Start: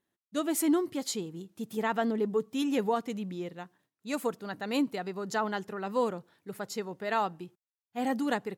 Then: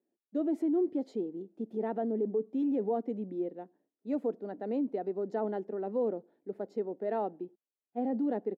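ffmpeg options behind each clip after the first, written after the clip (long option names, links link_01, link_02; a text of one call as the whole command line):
ffmpeg -i in.wav -filter_complex "[0:a]firequalizer=gain_entry='entry(150,0);entry(220,9);entry(730,-1);entry(1100,-17);entry(1800,-15);entry(2700,-21)':delay=0.05:min_phase=1,alimiter=limit=-21dB:level=0:latency=1:release=12,acrossover=split=270 5000:gain=0.112 1 0.126[link_01][link_02][link_03];[link_01][link_02][link_03]amix=inputs=3:normalize=0" out.wav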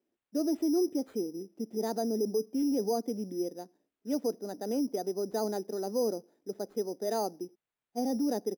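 ffmpeg -i in.wav -af "acrusher=samples=8:mix=1:aa=0.000001,volume=1dB" out.wav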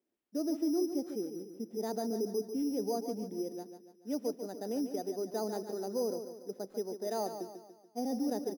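ffmpeg -i in.wav -af "aecho=1:1:144|288|432|576|720:0.355|0.163|0.0751|0.0345|0.0159,volume=-4dB" out.wav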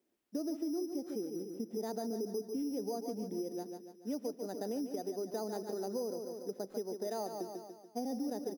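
ffmpeg -i in.wav -af "acompressor=threshold=-41dB:ratio=4,volume=5dB" out.wav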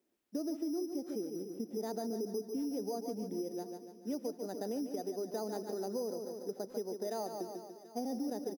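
ffmpeg -i in.wav -af "aecho=1:1:737:0.119" out.wav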